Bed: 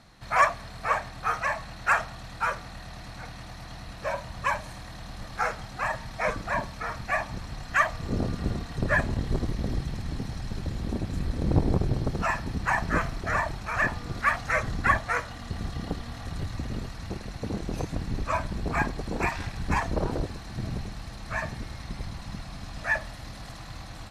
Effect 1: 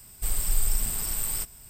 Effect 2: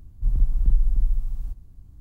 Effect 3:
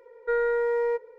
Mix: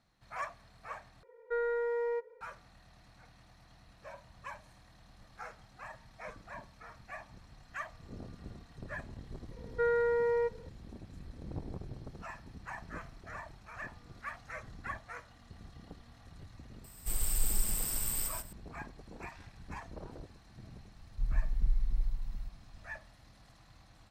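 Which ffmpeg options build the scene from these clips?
-filter_complex "[3:a]asplit=2[a][b];[0:a]volume=-18.5dB[c];[1:a]aecho=1:1:135:0.631[d];[c]asplit=2[e][f];[e]atrim=end=1.234[g];[a]atrim=end=1.18,asetpts=PTS-STARTPTS,volume=-8dB[h];[f]atrim=start=2.406[i];[b]atrim=end=1.18,asetpts=PTS-STARTPTS,volume=-4.5dB,afade=t=in:d=0.004:c=hsin,afade=t=out:st=1.176:d=0.004:c=hsin,adelay=9510[j];[d]atrim=end=1.69,asetpts=PTS-STARTPTS,volume=-6.5dB,afade=t=in:d=0.004:c=hsin,afade=t=out:st=1.686:d=0.004:c=hsin,adelay=742644S[k];[2:a]atrim=end=2,asetpts=PTS-STARTPTS,volume=-10.5dB,afade=t=in:d=0.004:c=hsin,afade=t=out:st=1.996:d=0.004:c=hsin,adelay=20960[l];[g][h]acrossfade=d=0.004:c1=hsin:c2=hsin[m];[m][i]acrossfade=d=0.004:c1=hsin:c2=hsin[n];[n][j][k][l]amix=inputs=4:normalize=0"

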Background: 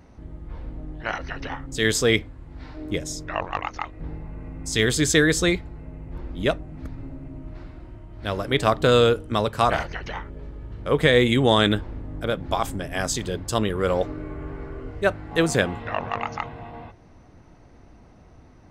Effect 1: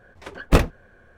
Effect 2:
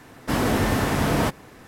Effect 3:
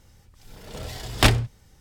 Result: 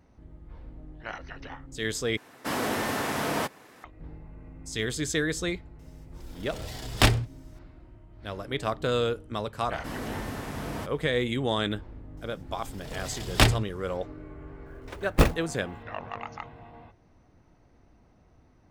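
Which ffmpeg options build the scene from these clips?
-filter_complex "[2:a]asplit=2[a][b];[3:a]asplit=2[c][d];[0:a]volume=-9.5dB[e];[a]highpass=f=410:p=1[f];[1:a]acrusher=bits=5:mode=log:mix=0:aa=0.000001[g];[e]asplit=2[h][i];[h]atrim=end=2.174[j];[f]atrim=end=1.67,asetpts=PTS-STARTPTS,volume=-3.5dB[k];[i]atrim=start=3.836[l];[c]atrim=end=1.8,asetpts=PTS-STARTPTS,volume=-3dB,afade=t=in:d=0.004:c=hsin,afade=t=out:st=1.796:d=0.004:c=hsin,adelay=5790[m];[b]atrim=end=1.67,asetpts=PTS-STARTPTS,volume=-13.5dB,afade=t=in:d=0.004:c=hsin,afade=t=out:st=1.666:d=0.004:c=hsin,adelay=9560[n];[d]atrim=end=1.8,asetpts=PTS-STARTPTS,volume=-2.5dB,afade=t=in:d=0.004:c=hsin,afade=t=out:st=1.796:d=0.004:c=hsin,adelay=12170[o];[g]atrim=end=1.17,asetpts=PTS-STARTPTS,volume=-4dB,afade=t=in:d=0.004:c=hsin,afade=t=out:st=1.166:d=0.004:c=hsin,adelay=14660[p];[j][k]acrossfade=d=0.004:c1=hsin:c2=hsin[q];[q][l]acrossfade=d=0.004:c1=hsin:c2=hsin[r];[r][m][n][o][p]amix=inputs=5:normalize=0"

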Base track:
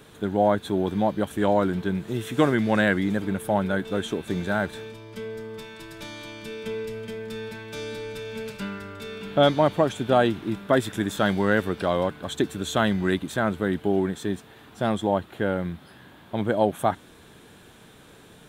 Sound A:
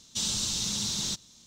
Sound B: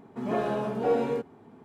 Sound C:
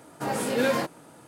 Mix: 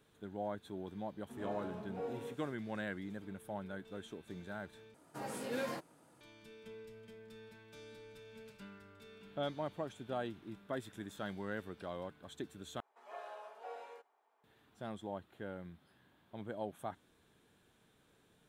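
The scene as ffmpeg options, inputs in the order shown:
-filter_complex "[2:a]asplit=2[a][b];[0:a]volume=-20dB[c];[b]highpass=f=630:w=0.5412,highpass=f=630:w=1.3066[d];[c]asplit=3[e][f][g];[e]atrim=end=4.944[h];[3:a]atrim=end=1.27,asetpts=PTS-STARTPTS,volume=-14.5dB[i];[f]atrim=start=6.206:end=12.804[j];[d]atrim=end=1.64,asetpts=PTS-STARTPTS,volume=-15.5dB[k];[g]atrim=start=14.436[l];[a]atrim=end=1.64,asetpts=PTS-STARTPTS,volume=-17dB,afade=t=in:d=0.004:c=hsin,afade=t=out:st=1.636:d=0.004:c=hsin,adelay=1130[m];[h][i]acrossfade=d=0.004:c1=hsin:c2=hsin[n];[n][j]acrossfade=d=0.004:c1=hsin:c2=hsin[o];[o][k]acrossfade=d=0.004:c1=hsin:c2=hsin[p];[p][l]acrossfade=d=0.004:c1=hsin:c2=hsin[q];[q][m]amix=inputs=2:normalize=0"

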